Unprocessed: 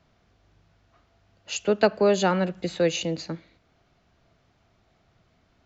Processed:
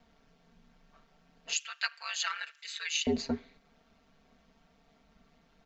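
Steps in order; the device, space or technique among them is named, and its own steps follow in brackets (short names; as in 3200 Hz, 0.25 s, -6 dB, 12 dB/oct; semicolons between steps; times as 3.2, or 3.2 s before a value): 1.53–3.07 inverse Chebyshev high-pass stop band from 340 Hz, stop band 70 dB; ring-modulated robot voice (ring modulator 74 Hz; comb 4.4 ms, depth 81%)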